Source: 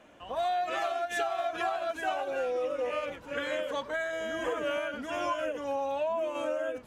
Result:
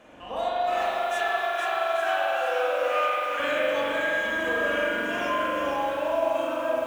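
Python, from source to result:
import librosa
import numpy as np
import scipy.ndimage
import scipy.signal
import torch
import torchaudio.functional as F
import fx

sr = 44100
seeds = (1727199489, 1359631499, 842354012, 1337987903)

y = fx.highpass(x, sr, hz=720.0, slope=12, at=(0.75, 3.4))
y = fx.rider(y, sr, range_db=10, speed_s=0.5)
y = fx.doubler(y, sr, ms=27.0, db=-9)
y = fx.rev_spring(y, sr, rt60_s=2.6, pass_ms=(42,), chirp_ms=25, drr_db=-5.0)
y = fx.echo_crushed(y, sr, ms=468, feedback_pct=35, bits=8, wet_db=-5)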